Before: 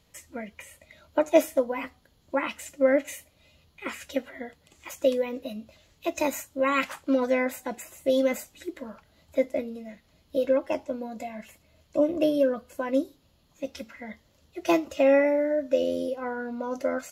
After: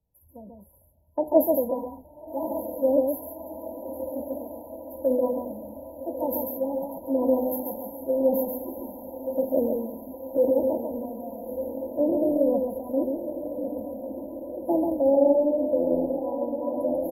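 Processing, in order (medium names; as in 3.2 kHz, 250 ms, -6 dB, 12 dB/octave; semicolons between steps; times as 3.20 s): transient shaper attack -1 dB, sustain +8 dB; 9.55–10.49 s: dynamic bell 460 Hz, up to +7 dB, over -38 dBFS, Q 0.83; echo that smears into a reverb 1178 ms, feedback 75%, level -7.5 dB; FFT band-reject 1–11 kHz; delay 140 ms -3.5 dB; three bands expanded up and down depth 40%; trim -2 dB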